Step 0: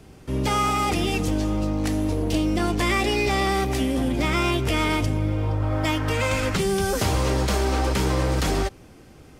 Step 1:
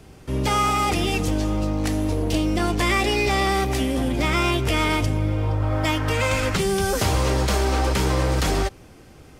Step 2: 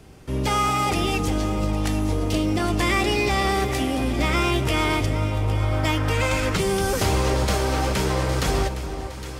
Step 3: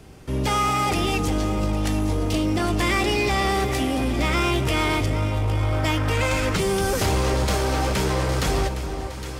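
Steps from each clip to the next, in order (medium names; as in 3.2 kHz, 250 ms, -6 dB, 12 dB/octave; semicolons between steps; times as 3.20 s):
peaking EQ 240 Hz -2.5 dB 1.4 oct; trim +2 dB
echo whose repeats swap between lows and highs 406 ms, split 1.2 kHz, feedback 72%, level -9.5 dB; trim -1 dB
saturation -15.5 dBFS, distortion -19 dB; trim +1.5 dB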